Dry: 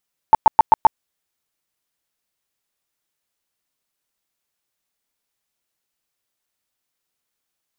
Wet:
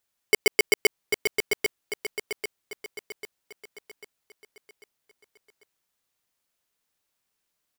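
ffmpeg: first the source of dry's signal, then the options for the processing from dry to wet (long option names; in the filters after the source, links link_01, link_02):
-f lavfi -i "aevalsrc='0.596*sin(2*PI*883*mod(t,0.13))*lt(mod(t,0.13),16/883)':duration=0.65:sample_rate=44100"
-filter_complex "[0:a]alimiter=limit=-12.5dB:level=0:latency=1:release=41,asplit=2[link_01][link_02];[link_02]adelay=794,lowpass=frequency=1700:poles=1,volume=-4.5dB,asplit=2[link_03][link_04];[link_04]adelay=794,lowpass=frequency=1700:poles=1,volume=0.5,asplit=2[link_05][link_06];[link_06]adelay=794,lowpass=frequency=1700:poles=1,volume=0.5,asplit=2[link_07][link_08];[link_08]adelay=794,lowpass=frequency=1700:poles=1,volume=0.5,asplit=2[link_09][link_10];[link_10]adelay=794,lowpass=frequency=1700:poles=1,volume=0.5,asplit=2[link_11][link_12];[link_12]adelay=794,lowpass=frequency=1700:poles=1,volume=0.5[link_13];[link_01][link_03][link_05][link_07][link_09][link_11][link_13]amix=inputs=7:normalize=0,aeval=exprs='val(0)*sgn(sin(2*PI*1300*n/s))':channel_layout=same"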